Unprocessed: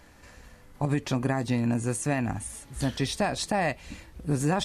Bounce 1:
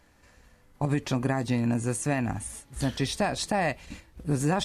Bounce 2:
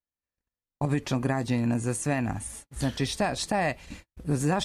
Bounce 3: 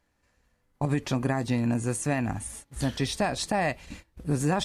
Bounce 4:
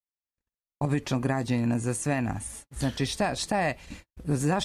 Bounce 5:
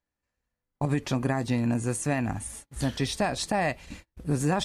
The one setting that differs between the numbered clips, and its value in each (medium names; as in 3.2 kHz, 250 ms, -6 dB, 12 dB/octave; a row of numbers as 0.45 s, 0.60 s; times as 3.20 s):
gate, range: -7 dB, -46 dB, -19 dB, -59 dB, -34 dB